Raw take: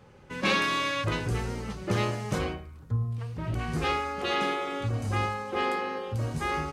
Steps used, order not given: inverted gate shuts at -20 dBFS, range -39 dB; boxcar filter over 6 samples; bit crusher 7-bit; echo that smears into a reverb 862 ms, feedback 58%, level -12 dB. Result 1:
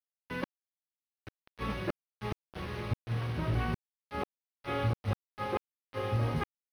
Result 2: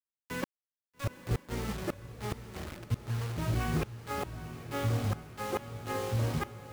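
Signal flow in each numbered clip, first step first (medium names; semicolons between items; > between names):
echo that smears into a reverb > inverted gate > bit crusher > boxcar filter; inverted gate > boxcar filter > bit crusher > echo that smears into a reverb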